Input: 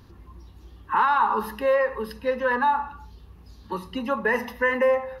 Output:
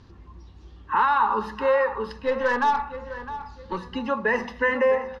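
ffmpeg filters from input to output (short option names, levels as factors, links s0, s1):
-filter_complex "[0:a]asettb=1/sr,asplit=3[s0][s1][s2];[s0]atrim=end=2.094[s3];[s1]atrim=start=2.09:end=3.78,asetpts=PTS-STARTPTS,afade=t=in:d=0.004:c=qsin,afade=t=out:st=1.686:d=0.004:c=qsin,aeval=exprs='0.251*(cos(1*acos(clip(val(0)/0.251,-1,1)))-cos(1*PI/2))+0.01*(cos(8*acos(clip(val(0)/0.251,-1,1)))-cos(8*PI/2))':c=same[s4];[s2]atrim=start=3.776[s5];[s3][s4]acrossfade=d=0.004:c1=hsin:c2=qsin[s6];[s6][s5]acrossfade=d=0.004:c1=qsin:c2=hsin,lowpass=f=6900:w=0.5412,lowpass=f=6900:w=1.3066,asplit=2[s7][s8];[s8]adelay=659,lowpass=f=3500:p=1,volume=0.237,asplit=2[s9][s10];[s10]adelay=659,lowpass=f=3500:p=1,volume=0.31,asplit=2[s11][s12];[s12]adelay=659,lowpass=f=3500:p=1,volume=0.31[s13];[s7][s9][s11][s13]amix=inputs=4:normalize=0"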